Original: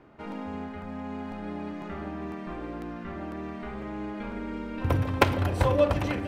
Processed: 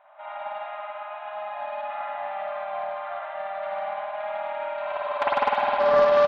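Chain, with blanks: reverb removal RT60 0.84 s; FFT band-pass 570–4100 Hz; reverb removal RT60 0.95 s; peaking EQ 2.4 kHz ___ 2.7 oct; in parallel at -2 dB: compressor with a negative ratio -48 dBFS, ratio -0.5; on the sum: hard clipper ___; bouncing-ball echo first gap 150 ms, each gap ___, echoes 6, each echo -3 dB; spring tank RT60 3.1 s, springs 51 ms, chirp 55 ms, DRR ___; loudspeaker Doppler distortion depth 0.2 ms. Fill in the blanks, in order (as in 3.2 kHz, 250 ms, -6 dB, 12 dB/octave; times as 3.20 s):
-11.5 dB, -17.5 dBFS, 0.7×, -9.5 dB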